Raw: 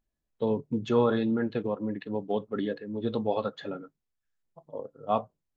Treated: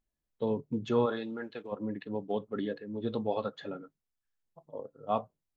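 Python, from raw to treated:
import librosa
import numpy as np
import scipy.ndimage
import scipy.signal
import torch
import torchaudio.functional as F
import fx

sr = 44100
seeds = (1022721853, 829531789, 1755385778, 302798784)

y = fx.highpass(x, sr, hz=fx.line((1.05, 430.0), (1.71, 1100.0)), slope=6, at=(1.05, 1.71), fade=0.02)
y = y * librosa.db_to_amplitude(-3.5)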